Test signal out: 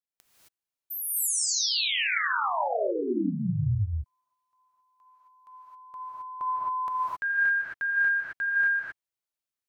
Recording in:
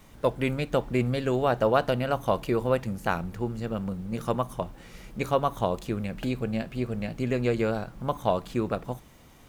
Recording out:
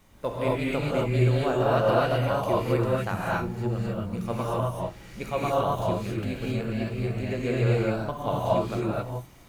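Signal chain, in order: gated-style reverb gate 290 ms rising, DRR -6.5 dB; trim -6 dB

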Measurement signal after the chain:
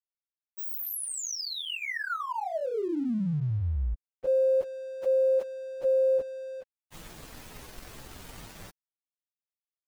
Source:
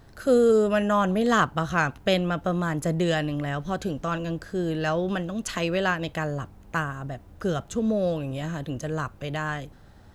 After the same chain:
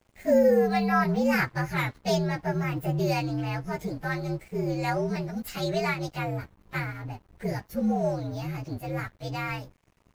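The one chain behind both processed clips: frequency axis rescaled in octaves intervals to 118%; crossover distortion -53 dBFS

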